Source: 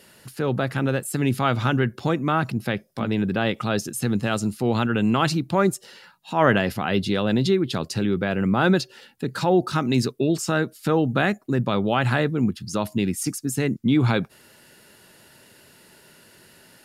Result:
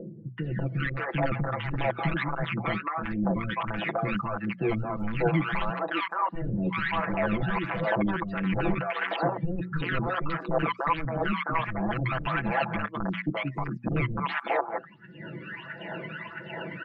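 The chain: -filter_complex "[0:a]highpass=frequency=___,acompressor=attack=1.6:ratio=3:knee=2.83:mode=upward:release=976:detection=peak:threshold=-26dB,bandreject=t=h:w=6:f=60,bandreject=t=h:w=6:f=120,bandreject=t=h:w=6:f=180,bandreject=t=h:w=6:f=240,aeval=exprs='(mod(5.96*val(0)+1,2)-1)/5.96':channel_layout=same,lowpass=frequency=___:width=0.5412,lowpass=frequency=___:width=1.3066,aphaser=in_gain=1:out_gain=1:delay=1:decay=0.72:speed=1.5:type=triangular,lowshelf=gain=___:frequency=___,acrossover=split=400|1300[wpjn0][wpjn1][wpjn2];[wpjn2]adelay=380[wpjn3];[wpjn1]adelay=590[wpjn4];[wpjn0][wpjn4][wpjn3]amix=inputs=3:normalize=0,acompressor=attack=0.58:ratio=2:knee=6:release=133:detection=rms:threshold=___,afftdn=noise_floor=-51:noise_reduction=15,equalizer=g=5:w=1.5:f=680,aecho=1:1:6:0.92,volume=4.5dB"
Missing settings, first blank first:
130, 2300, 2300, -8, 500, -38dB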